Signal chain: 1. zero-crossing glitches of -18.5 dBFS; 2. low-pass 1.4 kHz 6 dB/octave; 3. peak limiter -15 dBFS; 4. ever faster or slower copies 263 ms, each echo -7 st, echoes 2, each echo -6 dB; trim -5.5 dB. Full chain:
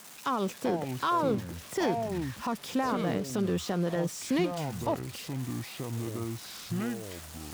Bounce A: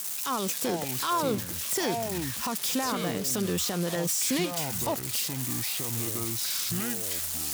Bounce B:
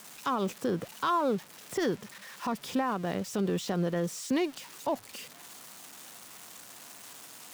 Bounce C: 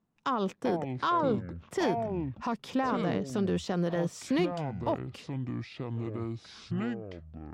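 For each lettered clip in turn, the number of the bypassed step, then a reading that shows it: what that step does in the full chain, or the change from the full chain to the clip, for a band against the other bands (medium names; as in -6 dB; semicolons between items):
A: 2, 8 kHz band +14.5 dB; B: 4, 125 Hz band -3.5 dB; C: 1, distortion -5 dB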